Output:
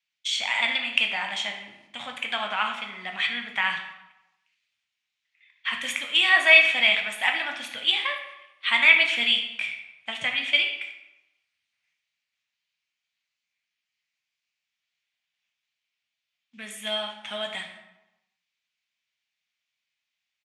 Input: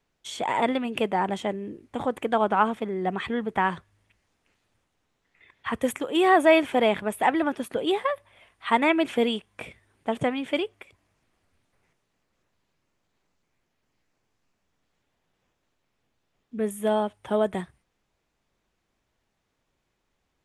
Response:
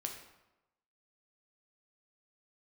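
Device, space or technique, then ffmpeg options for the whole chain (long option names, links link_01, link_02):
supermarket ceiling speaker: -filter_complex "[0:a]agate=range=-12dB:threshold=-50dB:ratio=16:detection=peak,highpass=260,lowpass=5100,firequalizer=gain_entry='entry(100,0);entry(410,-26);entry(600,-10);entry(860,-8);entry(2300,14)':delay=0.05:min_phase=1[link_01];[1:a]atrim=start_sample=2205[link_02];[link_01][link_02]afir=irnorm=-1:irlink=0"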